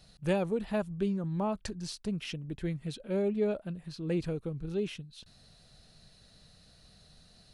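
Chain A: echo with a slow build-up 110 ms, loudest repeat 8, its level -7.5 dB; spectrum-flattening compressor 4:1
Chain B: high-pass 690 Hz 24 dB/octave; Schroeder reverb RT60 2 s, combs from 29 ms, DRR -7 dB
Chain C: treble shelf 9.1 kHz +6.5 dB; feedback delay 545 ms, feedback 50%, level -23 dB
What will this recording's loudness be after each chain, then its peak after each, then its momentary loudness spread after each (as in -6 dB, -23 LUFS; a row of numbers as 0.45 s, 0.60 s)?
-33.5 LUFS, -36.0 LUFS, -34.0 LUFS; -15.0 dBFS, -19.0 dBFS, -17.0 dBFS; 4 LU, 19 LU, 9 LU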